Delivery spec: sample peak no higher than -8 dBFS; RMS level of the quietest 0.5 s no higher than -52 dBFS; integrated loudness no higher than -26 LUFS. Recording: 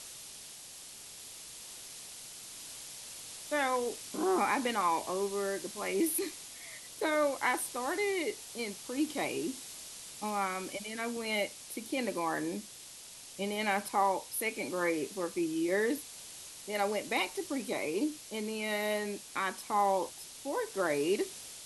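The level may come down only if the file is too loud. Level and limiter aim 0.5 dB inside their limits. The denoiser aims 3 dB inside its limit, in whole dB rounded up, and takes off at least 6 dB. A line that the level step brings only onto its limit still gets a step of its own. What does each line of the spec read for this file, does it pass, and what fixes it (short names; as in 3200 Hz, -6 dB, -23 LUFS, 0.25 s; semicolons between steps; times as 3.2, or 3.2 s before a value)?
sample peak -17.0 dBFS: OK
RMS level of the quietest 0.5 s -50 dBFS: fail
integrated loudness -34.0 LUFS: OK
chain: denoiser 6 dB, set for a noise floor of -50 dBFS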